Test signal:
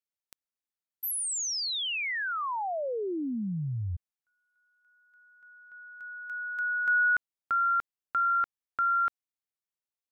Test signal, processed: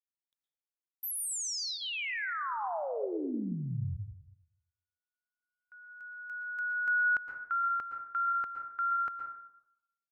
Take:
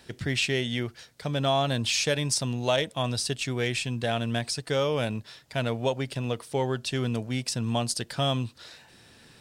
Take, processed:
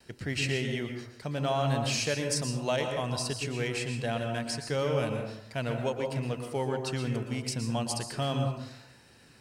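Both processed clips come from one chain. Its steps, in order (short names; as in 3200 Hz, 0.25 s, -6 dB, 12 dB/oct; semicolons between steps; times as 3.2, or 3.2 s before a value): notch 3500 Hz, Q 6.7; gate with hold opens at -48 dBFS, range -34 dB; plate-style reverb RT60 0.78 s, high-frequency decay 0.45×, pre-delay 0.105 s, DRR 4 dB; gain -4.5 dB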